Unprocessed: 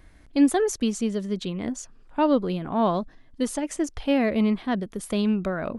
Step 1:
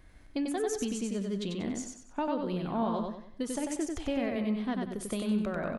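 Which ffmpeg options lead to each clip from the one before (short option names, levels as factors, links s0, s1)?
-filter_complex "[0:a]acompressor=threshold=0.0562:ratio=6,flanger=delay=7.8:depth=2.5:regen=87:speed=0.43:shape=sinusoidal,asplit=2[s0][s1];[s1]aecho=0:1:94|188|282|376|470:0.668|0.241|0.0866|0.0312|0.0112[s2];[s0][s2]amix=inputs=2:normalize=0"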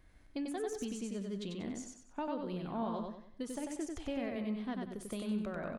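-af "deesser=0.85,volume=0.473"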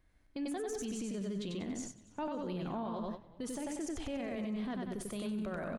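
-filter_complex "[0:a]agate=range=0.2:threshold=0.00501:ratio=16:detection=peak,alimiter=level_in=5.31:limit=0.0631:level=0:latency=1:release=41,volume=0.188,asplit=4[s0][s1][s2][s3];[s1]adelay=281,afreqshift=-39,volume=0.0841[s4];[s2]adelay=562,afreqshift=-78,volume=0.0403[s5];[s3]adelay=843,afreqshift=-117,volume=0.0193[s6];[s0][s4][s5][s6]amix=inputs=4:normalize=0,volume=2.24"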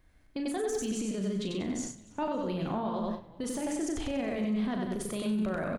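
-filter_complex "[0:a]asplit=2[s0][s1];[s1]adelay=37,volume=0.422[s2];[s0][s2]amix=inputs=2:normalize=0,volume=1.88"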